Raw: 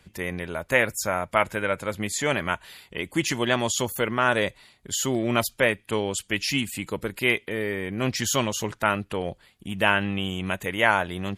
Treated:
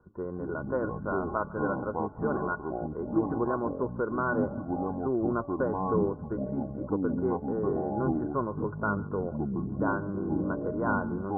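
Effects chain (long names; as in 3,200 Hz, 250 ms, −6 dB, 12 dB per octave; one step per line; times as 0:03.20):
hum removal 286.6 Hz, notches 4
in parallel at +0.5 dB: downward compressor, threshold −29 dBFS, peak gain reduction 14 dB
on the sum: Chebyshev low-pass with heavy ripple 1,500 Hz, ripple 9 dB
feedback echo with a high-pass in the loop 144 ms, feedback 67%, high-pass 890 Hz, level −19 dB
delay with pitch and tempo change per echo 157 ms, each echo −5 semitones, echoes 3
level −4 dB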